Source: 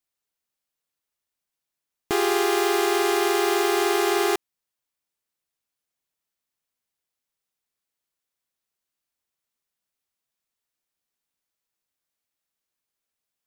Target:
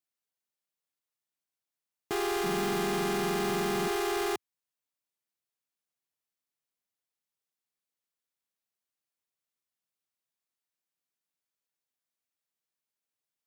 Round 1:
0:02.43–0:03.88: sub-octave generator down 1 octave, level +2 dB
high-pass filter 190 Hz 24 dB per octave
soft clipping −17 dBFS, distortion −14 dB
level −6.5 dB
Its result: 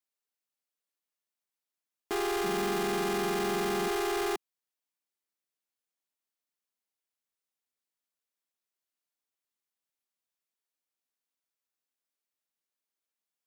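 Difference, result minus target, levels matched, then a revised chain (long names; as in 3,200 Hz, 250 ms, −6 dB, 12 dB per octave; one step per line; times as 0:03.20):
125 Hz band −3.0 dB
0:02.43–0:03.88: sub-octave generator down 1 octave, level +2 dB
high-pass filter 94 Hz 24 dB per octave
soft clipping −17 dBFS, distortion −14 dB
level −6.5 dB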